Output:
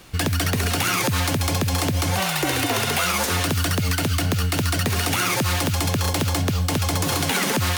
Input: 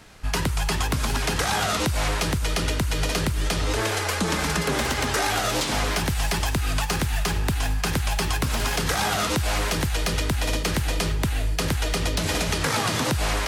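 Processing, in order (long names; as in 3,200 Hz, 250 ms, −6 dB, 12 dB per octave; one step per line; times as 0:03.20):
notch filter 4,400 Hz, Q 22
wrong playback speed 45 rpm record played at 78 rpm
level +2 dB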